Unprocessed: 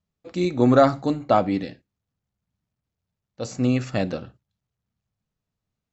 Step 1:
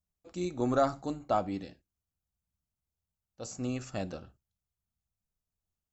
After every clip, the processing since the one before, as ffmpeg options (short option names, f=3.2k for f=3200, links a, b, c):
-af "equalizer=f=125:t=o:w=1:g=-12,equalizer=f=250:t=o:w=1:g=-9,equalizer=f=500:t=o:w=1:g=-9,equalizer=f=1k:t=o:w=1:g=-5,equalizer=f=2k:t=o:w=1:g=-12,equalizer=f=4k:t=o:w=1:g=-9"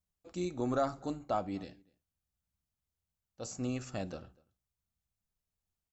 -filter_complex "[0:a]asplit=2[a][b];[b]alimiter=level_in=2.5dB:limit=-24dB:level=0:latency=1:release=380,volume=-2.5dB,volume=1.5dB[c];[a][c]amix=inputs=2:normalize=0,asplit=2[d][e];[e]adelay=244.9,volume=-26dB,highshelf=f=4k:g=-5.51[f];[d][f]amix=inputs=2:normalize=0,volume=-7.5dB"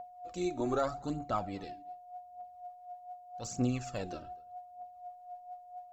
-af "aeval=exprs='val(0)+0.00447*sin(2*PI*720*n/s)':c=same,aphaser=in_gain=1:out_gain=1:delay=3.3:decay=0.57:speed=0.83:type=triangular"